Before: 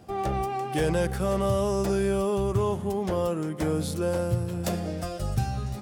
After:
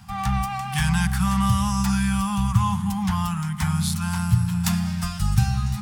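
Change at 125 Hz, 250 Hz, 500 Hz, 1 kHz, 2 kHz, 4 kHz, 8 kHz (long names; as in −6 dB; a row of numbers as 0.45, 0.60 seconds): +7.5, +6.0, −25.5, +4.5, +7.5, +8.5, +8.5 decibels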